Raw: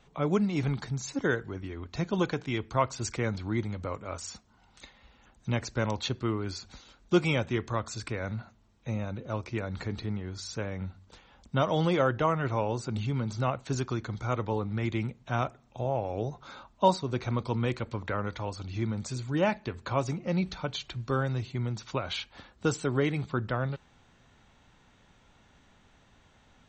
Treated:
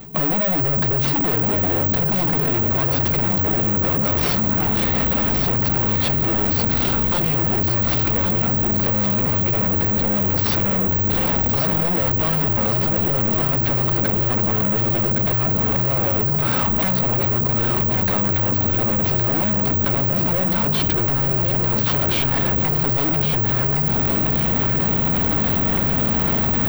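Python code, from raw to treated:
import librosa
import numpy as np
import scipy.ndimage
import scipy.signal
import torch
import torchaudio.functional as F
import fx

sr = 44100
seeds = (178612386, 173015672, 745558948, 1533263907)

y = fx.cvsd(x, sr, bps=32000)
y = fx.recorder_agc(y, sr, target_db=-17.0, rise_db_per_s=72.0, max_gain_db=30)
y = fx.lowpass(y, sr, hz=1500.0, slope=6)
y = fx.peak_eq(y, sr, hz=180.0, db=11.0, octaves=2.4)
y = fx.hum_notches(y, sr, base_hz=50, count=3)
y = fx.fold_sine(y, sr, drive_db=18, ceiling_db=2.5)
y = fx.quant_dither(y, sr, seeds[0], bits=8, dither='triangular')
y = 10.0 ** (-12.0 / 20.0) * np.tanh(y / 10.0 ** (-12.0 / 20.0))
y = fx.echo_feedback(y, sr, ms=1116, feedback_pct=48, wet_db=-5.0)
y = (np.kron(y[::2], np.eye(2)[0]) * 2)[:len(y)]
y = fx.level_steps(y, sr, step_db=19)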